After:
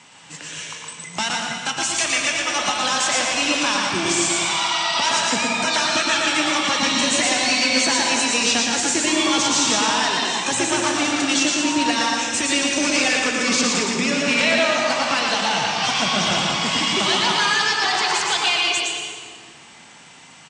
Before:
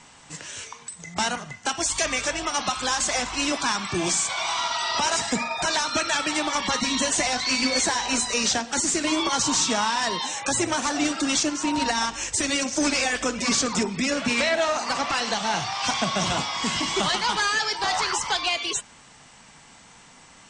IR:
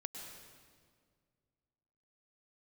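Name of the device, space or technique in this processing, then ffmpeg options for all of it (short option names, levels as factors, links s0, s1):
PA in a hall: -filter_complex "[0:a]highpass=110,equalizer=f=2800:t=o:w=1:g=5.5,aecho=1:1:116:0.631[s0];[1:a]atrim=start_sample=2205[s1];[s0][s1]afir=irnorm=-1:irlink=0,asettb=1/sr,asplit=3[s2][s3][s4];[s2]atrim=end=1.214[s5];[s3]atrim=start=1.21:end=2.47,asetpts=PTS-STARTPTS,afade=t=in:d=0.004:c=qsin,afade=t=out:st=1.256:d=0.004:c=qsin,equalizer=f=480:t=o:w=1.3:g=-6[s6];[s4]atrim=start=2.466[s7];[s5][s6]acrossfade=d=0.004:c1=hsin:c2=qsin[s8];[s8][s7]acrossfade=d=0.004:c1=qsin:c2=hsin,volume=1.58"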